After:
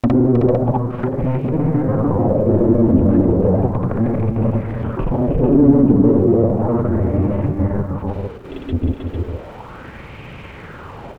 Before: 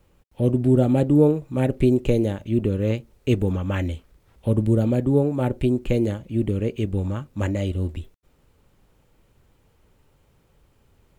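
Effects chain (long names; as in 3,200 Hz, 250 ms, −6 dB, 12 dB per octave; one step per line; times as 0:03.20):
slices reordered back to front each 141 ms, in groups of 7
bass and treble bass +11 dB, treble −7 dB
brickwall limiter −11 dBFS, peak gain reduction 11.5 dB
mid-hump overdrive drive 37 dB, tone 1,800 Hz, clips at −11 dBFS
treble cut that deepens with the level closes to 640 Hz, closed at −17 dBFS
granular cloud 100 ms, grains 20 per second
surface crackle 360 per second −49 dBFS
multi-tap delay 314/449 ms −6/−7 dB
auto-filter bell 0.34 Hz 260–2,500 Hz +11 dB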